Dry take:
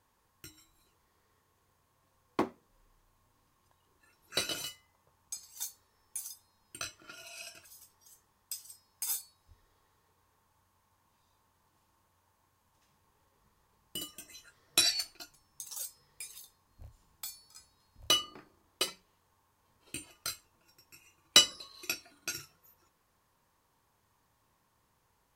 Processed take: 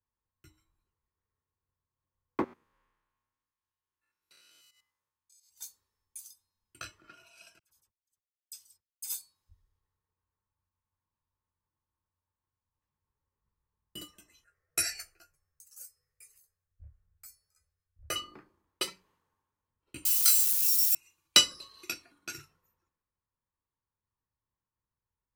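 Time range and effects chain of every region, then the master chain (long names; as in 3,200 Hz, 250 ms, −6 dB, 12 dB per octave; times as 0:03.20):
0:02.44–0:05.50: spectrum averaged block by block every 100 ms + tilt shelving filter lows −7.5 dB, about 1,100 Hz + downward compressor 10 to 1, threshold −46 dBFS
0:07.59–0:09.14: noise gate −58 dBFS, range −21 dB + all-pass dispersion lows, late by 42 ms, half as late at 2,400 Hz
0:14.44–0:18.16: phaser with its sweep stopped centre 970 Hz, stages 6 + double-tracking delay 12 ms −7 dB
0:20.05–0:20.95: spike at every zero crossing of −31.5 dBFS + spectral tilt +3.5 dB per octave
whole clip: parametric band 690 Hz −6 dB 0.46 octaves; multiband upward and downward expander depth 70%; level −5.5 dB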